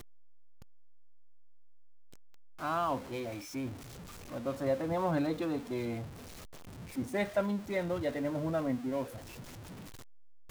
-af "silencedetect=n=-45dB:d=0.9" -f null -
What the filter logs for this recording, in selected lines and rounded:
silence_start: 0.00
silence_end: 2.60 | silence_duration: 2.60